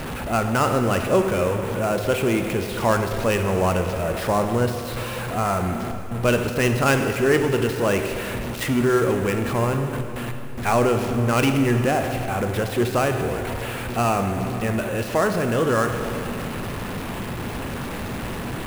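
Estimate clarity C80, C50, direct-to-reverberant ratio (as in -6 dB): 7.0 dB, 6.5 dB, 5.5 dB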